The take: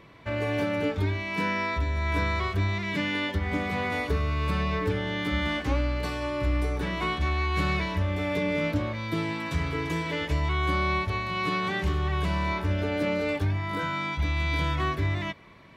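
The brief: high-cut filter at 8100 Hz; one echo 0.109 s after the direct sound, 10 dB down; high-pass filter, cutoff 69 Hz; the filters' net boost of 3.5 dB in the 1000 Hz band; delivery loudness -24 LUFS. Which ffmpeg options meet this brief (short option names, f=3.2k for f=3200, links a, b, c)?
-af "highpass=69,lowpass=8.1k,equalizer=f=1k:t=o:g=4,aecho=1:1:109:0.316,volume=3dB"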